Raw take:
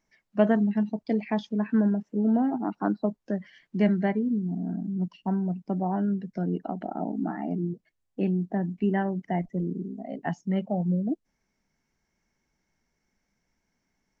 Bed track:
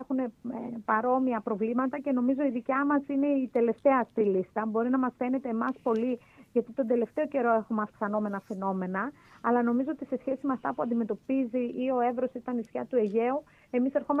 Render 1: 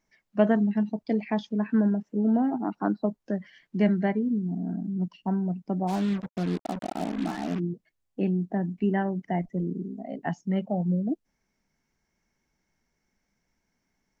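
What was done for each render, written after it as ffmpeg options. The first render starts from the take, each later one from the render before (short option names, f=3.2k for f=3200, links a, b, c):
-filter_complex "[0:a]asplit=3[a][b][c];[a]afade=t=out:st=5.87:d=0.02[d];[b]acrusher=bits=5:mix=0:aa=0.5,afade=t=in:st=5.87:d=0.02,afade=t=out:st=7.58:d=0.02[e];[c]afade=t=in:st=7.58:d=0.02[f];[d][e][f]amix=inputs=3:normalize=0"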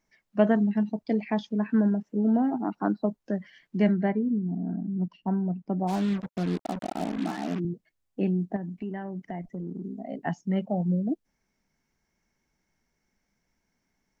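-filter_complex "[0:a]asettb=1/sr,asplit=3[a][b][c];[a]atrim=end=3.914[d];[b]atrim=start=3.91:end=5.79,asetpts=PTS-STARTPTS,afade=t=in:d=0.004:c=qsin,afade=t=out:st=1.876:d=0.004:c=qsin,highshelf=f=3.8k:g=-11.5[e];[c]atrim=start=5.786[f];[d][e]acrossfade=d=0.004:c1=hsin:c2=qsin[g];[g][f]acrossfade=d=0.004:c1=qsin:c2=hsin,asettb=1/sr,asplit=3[h][i][j];[h]atrim=end=7.174[k];[i]atrim=start=7.17:end=7.65,asetpts=PTS-STARTPTS,afade=t=in:d=0.004:c=qsin,afade=t=out:st=0.476:d=0.004:c=qsin,highpass=140[l];[j]atrim=start=7.646[m];[k][l]acrossfade=d=0.004:c1=hsin:c2=qsin[n];[n][m]acrossfade=d=0.004:c1=qsin:c2=hsin,asettb=1/sr,asplit=3[o][p][q];[o]atrim=end=8.564[r];[p]atrim=start=8.56:end=9.85,asetpts=PTS-STARTPTS,afade=t=in:d=0.004:c=qsin,afade=t=out:st=1.286:d=0.004:c=qsin,acompressor=threshold=-32dB:ratio=4:attack=3.2:release=140:knee=1:detection=peak[s];[q]atrim=start=9.846[t];[r][s]acrossfade=d=0.004:c1=hsin:c2=qsin[u];[u][t]acrossfade=d=0.004:c1=qsin:c2=hsin"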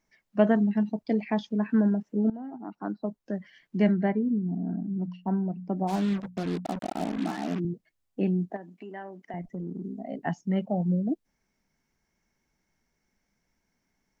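-filter_complex "[0:a]asettb=1/sr,asplit=3[a][b][c];[a]atrim=end=4.844[d];[b]atrim=start=4.84:end=6.66,asetpts=PTS-STARTPTS,afade=t=in:d=0.004:c=qsin,afade=t=out:st=1.816:d=0.004:c=qsin,bandreject=f=60:t=h:w=6,bandreject=f=120:t=h:w=6,bandreject=f=180:t=h:w=6,bandreject=f=240:t=h:w=6[e];[c]atrim=start=6.656[f];[d][e]acrossfade=d=0.004:c1=hsin:c2=qsin[g];[g][f]acrossfade=d=0.004:c1=qsin:c2=hsin,asettb=1/sr,asplit=3[h][i][j];[h]atrim=end=8.504[k];[i]atrim=start=8.5:end=9.34,asetpts=PTS-STARTPTS,afade=t=in:d=0.004:c=qsin,afade=t=out:st=0.836:d=0.004:c=qsin,highpass=390[l];[j]atrim=start=9.336[m];[k][l]acrossfade=d=0.004:c1=hsin:c2=qsin[n];[n][m]acrossfade=d=0.004:c1=qsin:c2=hsin,asplit=2[o][p];[o]atrim=end=2.3,asetpts=PTS-STARTPTS,afade=t=out:st=2.296:d=0.004:c=hsin:silence=0.125893[q];[p]atrim=start=2.3,asetpts=PTS-STARTPTS,afade=t=in:d=1.53:silence=0.125893[r];[q][r]concat=n=2:v=0:a=1"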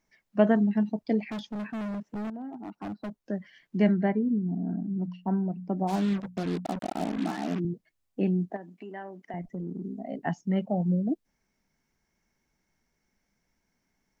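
-filter_complex "[0:a]asettb=1/sr,asplit=3[a][b][c];[a]atrim=end=1.264[d];[b]atrim=start=1.26:end=3.23,asetpts=PTS-STARTPTS,afade=t=in:d=0.004:c=qsin,afade=t=out:st=1.966:d=0.004:c=qsin,volume=32dB,asoftclip=hard,volume=-32dB[e];[c]atrim=start=3.226[f];[d][e]acrossfade=d=0.004:c1=hsin:c2=qsin[g];[g][f]acrossfade=d=0.004:c1=qsin:c2=hsin"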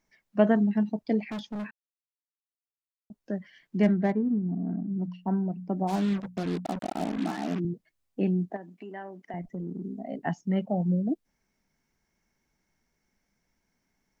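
-filter_complex "[0:a]asettb=1/sr,asplit=3[a][b][c];[a]atrim=end=3.834[d];[b]atrim=start=3.83:end=4.92,asetpts=PTS-STARTPTS,afade=t=in:d=0.004:c=qsin,afade=t=out:st=1.086:d=0.004:c=qsin,adynamicsmooth=sensitivity=6:basefreq=1.9k[e];[c]atrim=start=4.916[f];[d][e]acrossfade=d=0.004:c1=hsin:c2=qsin[g];[g][f]acrossfade=d=0.004:c1=qsin:c2=hsin,asplit=3[h][i][j];[h]atrim=end=1.71,asetpts=PTS-STARTPTS,afade=t=out:st=1.706:d=0.004:c=hsin[k];[i]atrim=start=1.71:end=3.1,asetpts=PTS-STARTPTS,volume=0[l];[j]atrim=start=3.1,asetpts=PTS-STARTPTS,afade=t=in:d=0.004:c=hsin[m];[k][l][m]concat=n=3:v=0:a=1"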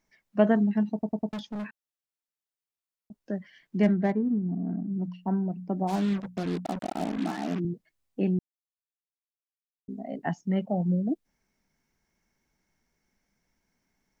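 -filter_complex "[0:a]asplit=7[a][b][c][d][e][f][g];[a]atrim=end=1.032[h];[b]atrim=start=0.928:end=1.032[i];[c]atrim=start=0.928:end=1.032[j];[d]atrim=start=0.928:end=1.032[k];[e]atrim=start=1.328:end=8.39,asetpts=PTS-STARTPTS,afade=t=out:st=7.058:d=0.004:c=hsin[l];[f]atrim=start=8.39:end=9.88,asetpts=PTS-STARTPTS,volume=0[m];[g]atrim=start=9.88,asetpts=PTS-STARTPTS,afade=t=in:d=0.004:c=hsin[n];[h][i]acrossfade=d=0.004:c1=hsin:c2=hsin[o];[o][j]acrossfade=d=0.004:c1=hsin:c2=hsin[p];[p][k]acrossfade=d=0.004:c1=hsin:c2=hsin[q];[l][m][n]concat=n=3:v=0:a=1[r];[q][r]acrossfade=d=0.004:c1=hsin:c2=hsin"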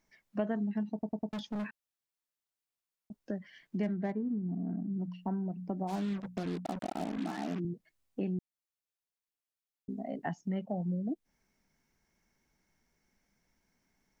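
-af "acompressor=threshold=-35dB:ratio=2.5"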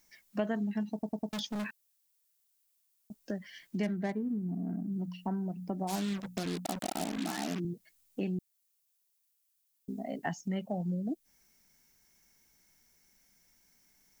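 -af "crystalizer=i=4.5:c=0"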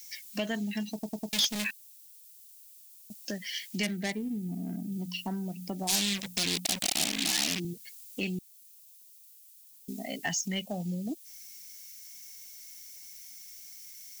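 -af "aexciter=amount=6.8:drive=5.3:freq=2k,asoftclip=type=tanh:threshold=-20.5dB"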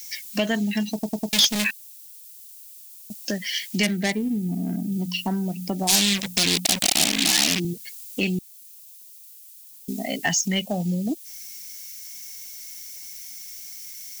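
-af "volume=9dB"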